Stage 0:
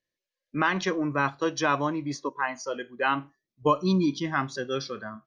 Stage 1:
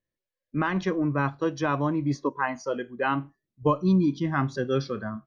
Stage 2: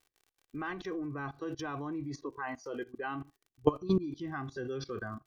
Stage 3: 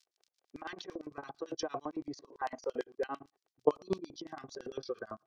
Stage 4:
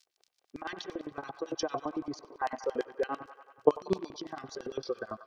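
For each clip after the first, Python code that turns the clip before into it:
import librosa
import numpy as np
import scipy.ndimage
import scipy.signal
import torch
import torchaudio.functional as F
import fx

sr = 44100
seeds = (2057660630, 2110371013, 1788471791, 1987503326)

y1 = fx.high_shelf(x, sr, hz=2800.0, db=-9.0)
y1 = fx.rider(y1, sr, range_db=3, speed_s=0.5)
y1 = fx.low_shelf(y1, sr, hz=230.0, db=11.0)
y1 = F.gain(torch.from_numpy(y1), -1.0).numpy()
y2 = fx.dmg_crackle(y1, sr, seeds[0], per_s=61.0, level_db=-48.0)
y2 = fx.level_steps(y2, sr, step_db=19)
y2 = y2 + 0.57 * np.pad(y2, (int(2.6 * sr / 1000.0), 0))[:len(y2)]
y3 = fx.filter_lfo_bandpass(y2, sr, shape='square', hz=8.9, low_hz=590.0, high_hz=5000.0, q=2.1)
y3 = y3 * np.abs(np.cos(np.pi * 8.6 * np.arange(len(y3)) / sr))
y3 = F.gain(torch.from_numpy(y3), 11.0).numpy()
y4 = fx.echo_wet_bandpass(y3, sr, ms=94, feedback_pct=70, hz=1500.0, wet_db=-12.0)
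y4 = F.gain(torch.from_numpy(y4), 4.0).numpy()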